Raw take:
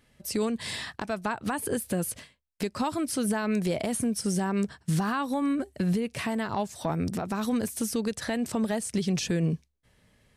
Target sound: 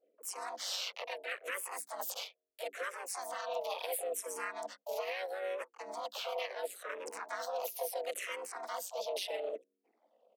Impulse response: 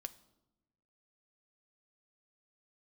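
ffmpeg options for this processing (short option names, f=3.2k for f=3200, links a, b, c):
-filter_complex "[0:a]adynamicequalizer=threshold=0.00355:dfrequency=1900:dqfactor=1.3:tfrequency=1900:tqfactor=1.3:attack=5:release=100:ratio=0.375:range=2:mode=boostabove:tftype=bell,areverse,acompressor=threshold=-41dB:ratio=6,areverse,anlmdn=0.000251,tremolo=f=190:d=0.857,afreqshift=280,asplit=4[a][b][c][d];[b]asetrate=33038,aresample=44100,atempo=1.33484,volume=-14dB[e];[c]asetrate=58866,aresample=44100,atempo=0.749154,volume=-3dB[f];[d]asetrate=66075,aresample=44100,atempo=0.66742,volume=-10dB[g];[a][e][f][g]amix=inputs=4:normalize=0,firequalizer=gain_entry='entry(110,0);entry(320,-21);entry(510,-2);entry(860,-7);entry(2500,-2)':delay=0.05:min_phase=1,asplit=2[h][i];[i]afreqshift=-0.74[j];[h][j]amix=inputs=2:normalize=1,volume=12.5dB"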